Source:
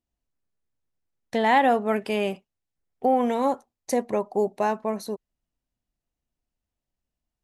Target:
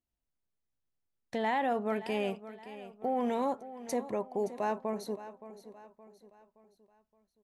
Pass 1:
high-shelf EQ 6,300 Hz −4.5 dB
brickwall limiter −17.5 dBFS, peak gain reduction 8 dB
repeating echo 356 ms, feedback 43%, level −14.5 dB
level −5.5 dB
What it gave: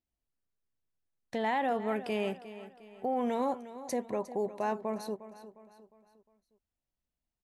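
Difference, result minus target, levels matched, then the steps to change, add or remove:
echo 214 ms early
change: repeating echo 570 ms, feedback 43%, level −14.5 dB

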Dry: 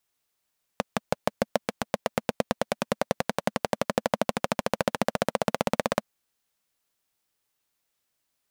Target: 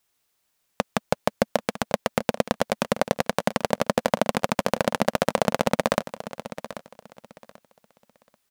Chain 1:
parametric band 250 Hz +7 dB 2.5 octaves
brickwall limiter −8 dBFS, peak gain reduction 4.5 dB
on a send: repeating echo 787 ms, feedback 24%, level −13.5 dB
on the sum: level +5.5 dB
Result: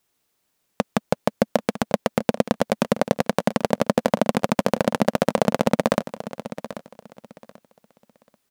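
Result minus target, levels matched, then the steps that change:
250 Hz band +3.0 dB
remove: parametric band 250 Hz +7 dB 2.5 octaves

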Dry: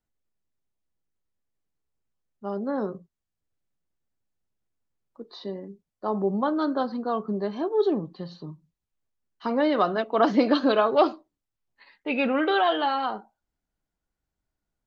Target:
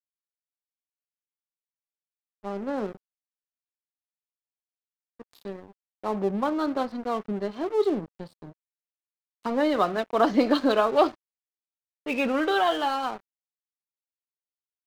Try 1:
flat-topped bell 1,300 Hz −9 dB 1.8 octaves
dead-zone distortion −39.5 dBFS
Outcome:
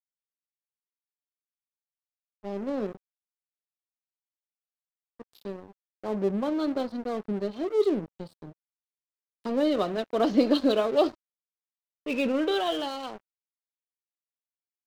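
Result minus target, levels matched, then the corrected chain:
1,000 Hz band −6.0 dB
dead-zone distortion −39.5 dBFS

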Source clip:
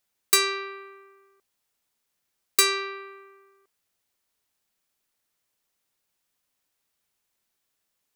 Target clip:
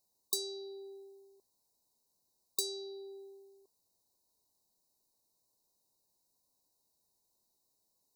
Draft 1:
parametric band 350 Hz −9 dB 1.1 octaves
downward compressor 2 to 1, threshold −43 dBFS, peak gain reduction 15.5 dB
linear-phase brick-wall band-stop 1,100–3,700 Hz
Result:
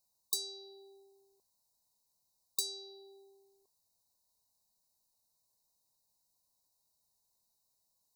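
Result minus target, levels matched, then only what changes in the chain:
250 Hz band −10.5 dB
change: parametric band 350 Hz +2 dB 1.1 octaves

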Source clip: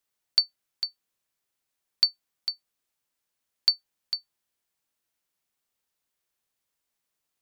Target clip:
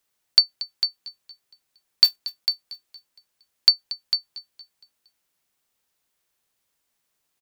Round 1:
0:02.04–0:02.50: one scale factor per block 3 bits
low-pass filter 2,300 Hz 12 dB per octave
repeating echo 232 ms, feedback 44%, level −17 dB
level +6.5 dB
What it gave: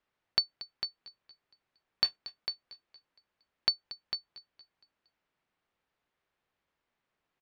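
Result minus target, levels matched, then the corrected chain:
2,000 Hz band +10.0 dB
0:02.04–0:02.50: one scale factor per block 3 bits
repeating echo 232 ms, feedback 44%, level −17 dB
level +6.5 dB

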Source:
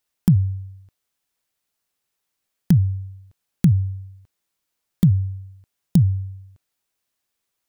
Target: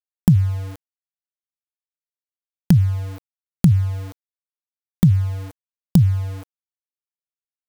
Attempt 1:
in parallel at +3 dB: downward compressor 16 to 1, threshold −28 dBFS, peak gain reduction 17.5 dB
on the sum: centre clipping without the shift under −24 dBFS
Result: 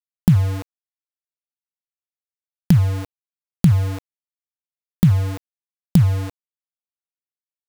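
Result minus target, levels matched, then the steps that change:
centre clipping without the shift: distortion +8 dB
change: centre clipping without the shift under −31.5 dBFS

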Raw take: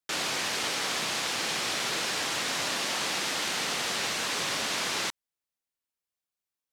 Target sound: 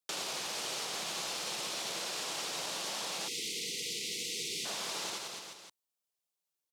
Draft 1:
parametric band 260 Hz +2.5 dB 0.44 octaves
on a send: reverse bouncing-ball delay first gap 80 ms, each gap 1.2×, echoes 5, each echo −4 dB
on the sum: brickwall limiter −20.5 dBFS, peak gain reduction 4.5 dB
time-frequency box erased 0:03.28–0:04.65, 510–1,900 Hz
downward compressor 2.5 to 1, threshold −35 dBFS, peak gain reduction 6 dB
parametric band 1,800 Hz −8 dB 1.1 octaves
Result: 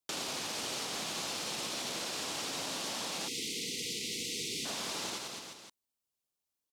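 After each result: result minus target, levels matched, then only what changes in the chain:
250 Hz band +5.5 dB; 125 Hz band +5.0 dB
change: first parametric band 260 Hz −7.5 dB 0.44 octaves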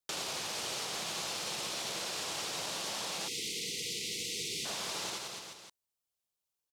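125 Hz band +4.0 dB
add after downward compressor: Bessel high-pass filter 170 Hz, order 8

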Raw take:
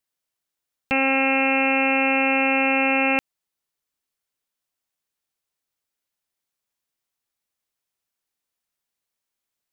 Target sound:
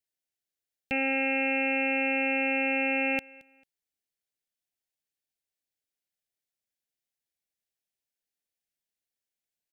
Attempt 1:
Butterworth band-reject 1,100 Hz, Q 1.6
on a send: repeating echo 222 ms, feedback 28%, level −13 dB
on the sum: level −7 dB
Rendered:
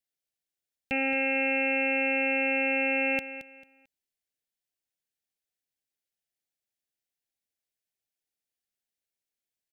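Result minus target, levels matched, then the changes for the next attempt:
echo-to-direct +10.5 dB
change: repeating echo 222 ms, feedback 28%, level −23.5 dB

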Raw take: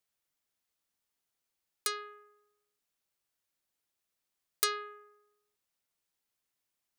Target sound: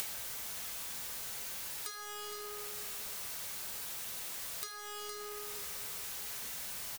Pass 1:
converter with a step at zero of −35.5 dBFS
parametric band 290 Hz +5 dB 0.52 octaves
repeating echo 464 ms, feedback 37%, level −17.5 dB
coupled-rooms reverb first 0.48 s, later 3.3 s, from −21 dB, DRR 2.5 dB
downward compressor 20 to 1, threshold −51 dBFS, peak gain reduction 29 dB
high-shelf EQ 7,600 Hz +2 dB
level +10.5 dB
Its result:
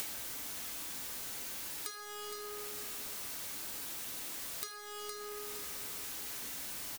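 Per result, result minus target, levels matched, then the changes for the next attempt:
250 Hz band +5.5 dB; converter with a step at zero: distortion −5 dB
change: parametric band 290 Hz −6 dB 0.52 octaves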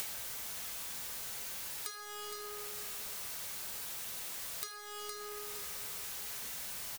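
converter with a step at zero: distortion −5 dB
change: converter with a step at zero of −29 dBFS

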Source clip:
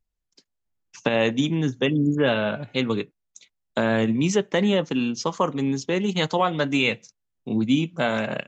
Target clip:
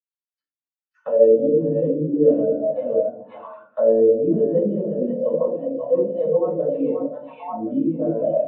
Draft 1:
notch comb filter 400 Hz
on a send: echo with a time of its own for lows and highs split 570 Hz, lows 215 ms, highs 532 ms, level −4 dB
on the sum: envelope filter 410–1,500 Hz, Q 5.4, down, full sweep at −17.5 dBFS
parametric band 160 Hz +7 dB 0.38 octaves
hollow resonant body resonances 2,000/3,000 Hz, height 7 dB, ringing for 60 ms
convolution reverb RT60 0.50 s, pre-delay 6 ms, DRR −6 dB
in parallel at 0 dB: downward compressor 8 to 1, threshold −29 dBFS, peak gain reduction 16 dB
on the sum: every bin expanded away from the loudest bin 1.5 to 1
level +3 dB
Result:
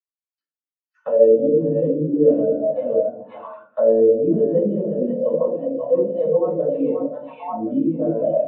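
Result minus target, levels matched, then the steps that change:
downward compressor: peak gain reduction −5 dB
change: downward compressor 8 to 1, threshold −35 dBFS, peak gain reduction 21.5 dB

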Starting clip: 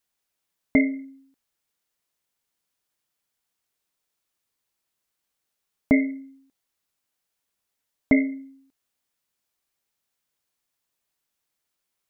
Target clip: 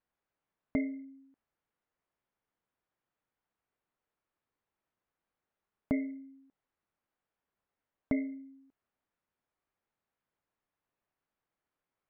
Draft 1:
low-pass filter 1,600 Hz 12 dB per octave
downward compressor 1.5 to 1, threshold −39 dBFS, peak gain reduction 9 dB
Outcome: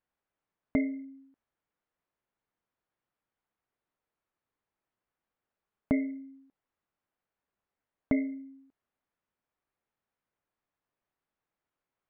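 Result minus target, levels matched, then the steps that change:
downward compressor: peak gain reduction −3.5 dB
change: downward compressor 1.5 to 1, threshold −50 dBFS, peak gain reduction 12.5 dB

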